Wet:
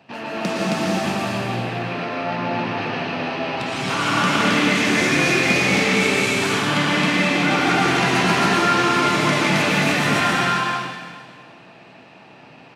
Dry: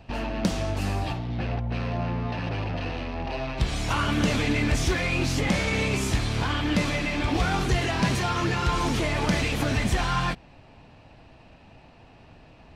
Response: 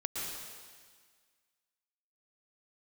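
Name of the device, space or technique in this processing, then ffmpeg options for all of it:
stadium PA: -filter_complex "[0:a]highpass=frequency=150:width=0.5412,highpass=frequency=150:width=1.3066,equalizer=frequency=1700:width_type=o:width=2.1:gain=4.5,aecho=1:1:166.2|268.2:0.316|1[link_01];[1:a]atrim=start_sample=2205[link_02];[link_01][link_02]afir=irnorm=-1:irlink=0"

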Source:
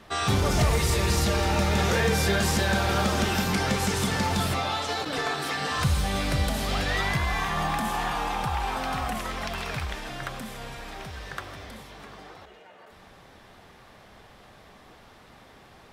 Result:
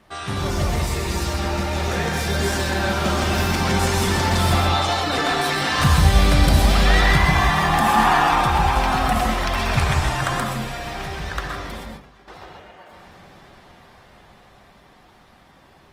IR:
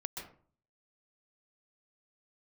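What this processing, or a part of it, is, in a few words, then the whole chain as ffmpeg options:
speakerphone in a meeting room: -filter_complex "[0:a]asettb=1/sr,asplit=3[link_01][link_02][link_03];[link_01]atrim=end=7.814[link_04];[link_02]atrim=start=7.81:end=8.42,asetpts=PTS-STARTPTS,afade=type=in:duration=0.004:curve=qsin,afade=type=out:start_time=0.606:duration=0.004:curve=qsin,equalizer=frequency=1300:width=0.94:gain=5.5[link_05];[link_03]atrim=start=8.416[link_06];[link_04][link_05]acrossfade=duration=0.004:curve1=hsin:curve2=qsin[link_07];[link_07][link_06]acrossfade=duration=0.004:curve1=qsin:curve2=hsin,bandreject=frequency=440:width=12,asettb=1/sr,asplit=3[link_08][link_09][link_10];[link_08]atrim=end=9.774[link_11];[link_09]atrim=start=9.77:end=10.4,asetpts=PTS-STARTPTS,afade=type=in:duration=0.004:curve=qsin,afade=type=out:start_time=0.626:duration=0.004:curve=qsin,equalizer=frequency=125:width_type=o:width=1:gain=9,equalizer=frequency=1000:width_type=o:width=1:gain=6,equalizer=frequency=8000:width_type=o:width=1:gain=8[link_12];[link_10]atrim=start=10.396[link_13];[link_11][link_12]acrossfade=duration=0.004:curve1=hsin:curve2=qsin[link_14];[link_14][link_13]acrossfade=duration=0.004:curve1=qsin:curve2=hsin,asettb=1/sr,asplit=3[link_15][link_16][link_17];[link_15]atrim=end=11.844[link_18];[link_16]atrim=start=11.84:end=12.28,asetpts=PTS-STARTPTS,afade=type=in:duration=0.004:curve=qsin,afade=type=out:start_time=0.436:duration=0.004:curve=qsin,agate=range=-33dB:threshold=-34dB:ratio=3:detection=peak[link_19];[link_17]atrim=start=12.276[link_20];[link_18][link_19]acrossfade=duration=0.004:curve1=hsin:curve2=qsin[link_21];[link_21][link_20]acrossfade=duration=0.004:curve1=qsin:curve2=hsin[link_22];[1:a]atrim=start_sample=2205[link_23];[link_22][link_23]afir=irnorm=-1:irlink=0,dynaudnorm=framelen=360:gausssize=21:maxgain=11.5dB" -ar 48000 -c:a libopus -b:a 24k

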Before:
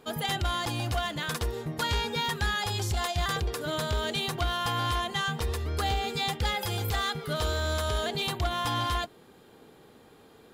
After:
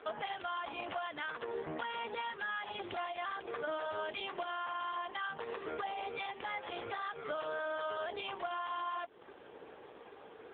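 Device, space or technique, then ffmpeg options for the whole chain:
voicemail: -filter_complex "[0:a]asplit=3[link_01][link_02][link_03];[link_01]afade=type=out:start_time=8.14:duration=0.02[link_04];[link_02]bandreject=frequency=162.5:width_type=h:width=4,bandreject=frequency=325:width_type=h:width=4,bandreject=frequency=487.5:width_type=h:width=4,bandreject=frequency=650:width_type=h:width=4,bandreject=frequency=812.5:width_type=h:width=4,bandreject=frequency=975:width_type=h:width=4,bandreject=frequency=1137.5:width_type=h:width=4,afade=type=in:start_time=8.14:duration=0.02,afade=type=out:start_time=8.61:duration=0.02[link_05];[link_03]afade=type=in:start_time=8.61:duration=0.02[link_06];[link_04][link_05][link_06]amix=inputs=3:normalize=0,highpass=430,lowpass=2800,acompressor=threshold=-42dB:ratio=12,volume=8.5dB" -ar 8000 -c:a libopencore_amrnb -b:a 5150

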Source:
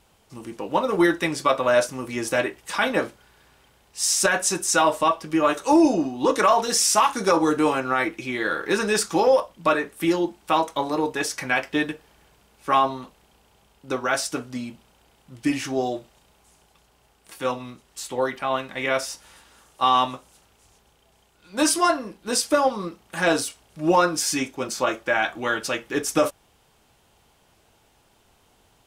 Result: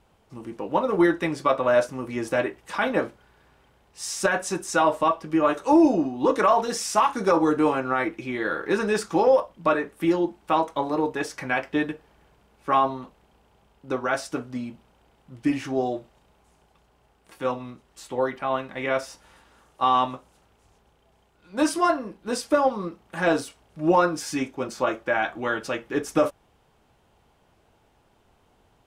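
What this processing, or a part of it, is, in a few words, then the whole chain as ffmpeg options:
through cloth: -af "highshelf=frequency=2800:gain=-12"

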